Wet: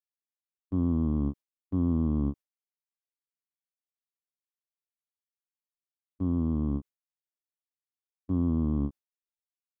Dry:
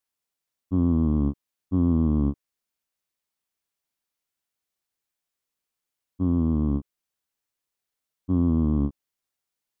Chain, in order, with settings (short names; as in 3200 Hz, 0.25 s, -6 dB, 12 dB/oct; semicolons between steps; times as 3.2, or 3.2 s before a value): gate with hold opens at -27 dBFS; gain -5 dB